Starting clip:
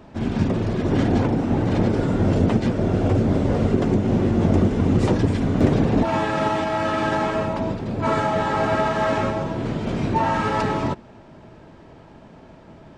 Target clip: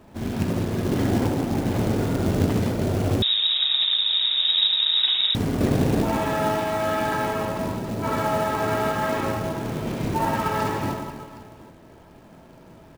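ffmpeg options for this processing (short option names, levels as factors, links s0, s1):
-filter_complex "[0:a]aecho=1:1:70|168|305.2|497.3|766.2:0.631|0.398|0.251|0.158|0.1,acrusher=bits=4:mode=log:mix=0:aa=0.000001,asettb=1/sr,asplit=3[s0][s1][s2];[s0]atrim=end=3.224[s3];[s1]atrim=start=3.22:end=5.35,asetpts=PTS-STARTPTS,afade=t=in:d=0.004:c=qsin,afade=t=out:st=2.126:d=0.004:c=qsin,lowpass=f=3300:t=q:w=0.5098,lowpass=f=3300:t=q:w=0.6013,lowpass=f=3300:t=q:w=0.9,lowpass=f=3300:t=q:w=2.563,afreqshift=-3900[s4];[s2]atrim=start=5.346[s5];[s3][s4]acrossfade=d=0.004:c1=hsin:c2=qsin[s6];[s6][s5]acrossfade=d=0.004:c1=qsin:c2=hsin,volume=0.562"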